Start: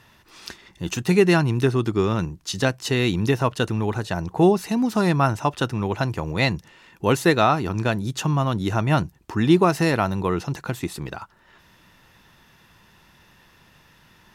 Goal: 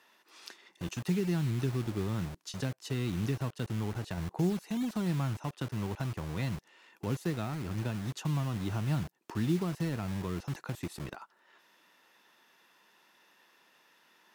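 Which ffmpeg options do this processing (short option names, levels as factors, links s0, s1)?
-filter_complex "[0:a]asettb=1/sr,asplit=3[s0][s1][s2];[s0]atrim=end=4.174[s3];[s1]atrim=start=4.17:end=4.62,asetpts=PTS-STARTPTS,afade=t=in:d=0.004:c=qsin,afade=t=out:st=0.446:d=0.004:c=qsin,lowshelf=f=160:g=3.5[s4];[s2]atrim=start=4.616[s5];[s3][s4]acrossfade=d=0.004:c1=hsin:c2=qsin[s6];[s6][s5]acrossfade=d=0.004:c1=qsin:c2=hsin,acrossover=split=260[s7][s8];[s7]acrusher=bits=5:mix=0:aa=0.000001[s9];[s8]acompressor=threshold=0.0224:ratio=4[s10];[s9][s10]amix=inputs=2:normalize=0,volume=0.376"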